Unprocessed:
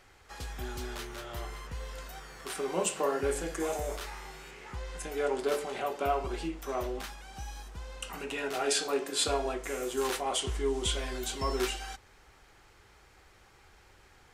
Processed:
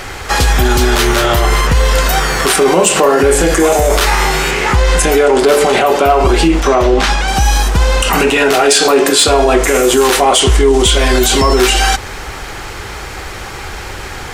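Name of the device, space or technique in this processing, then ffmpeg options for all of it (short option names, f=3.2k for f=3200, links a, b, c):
loud club master: -filter_complex "[0:a]acompressor=threshold=-38dB:ratio=1.5,asoftclip=type=hard:threshold=-26dB,alimiter=level_in=34.5dB:limit=-1dB:release=50:level=0:latency=1,asettb=1/sr,asplit=3[a][b][c];[a]atrim=end=6.604[d];[b]atrim=start=6.6:end=7.28,asetpts=PTS-STARTPTS,afade=t=in:d=0.004:c=qsin,afade=t=out:st=0.676:d=0.004:c=qsin,lowpass=6.5k[e];[c]atrim=start=7.276[f];[d][e]acrossfade=d=0.004:c1=hsin:c2=qsin[g];[g][f]acrossfade=d=0.004:c1=qsin:c2=hsin,volume=-1dB"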